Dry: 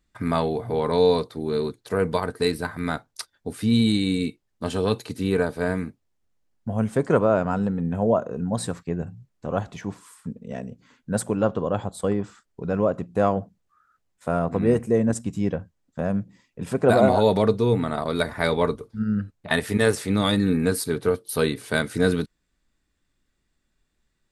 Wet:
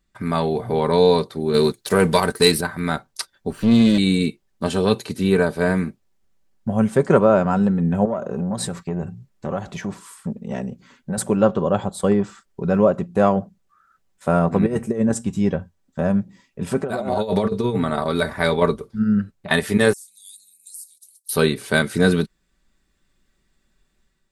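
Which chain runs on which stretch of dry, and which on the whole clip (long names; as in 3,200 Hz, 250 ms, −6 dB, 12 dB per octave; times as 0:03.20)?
0:01.54–0:02.61: high-shelf EQ 3,000 Hz +9.5 dB + leveller curve on the samples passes 1
0:03.50–0:03.98: lower of the sound and its delayed copy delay 0.67 ms + low-pass filter 2,800 Hz 6 dB per octave
0:08.05–0:11.18: downward compressor, threshold −25 dBFS + saturating transformer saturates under 370 Hz
0:14.66–0:18.62: tuned comb filter 89 Hz, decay 0.17 s, harmonics odd, mix 50% + compressor whose output falls as the input rises −25 dBFS, ratio −0.5
0:19.93–0:21.29: inverse Chebyshev high-pass filter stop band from 1,600 Hz, stop band 70 dB + downward compressor, threshold −40 dBFS
whole clip: comb filter 5.2 ms, depth 38%; automatic gain control gain up to 6 dB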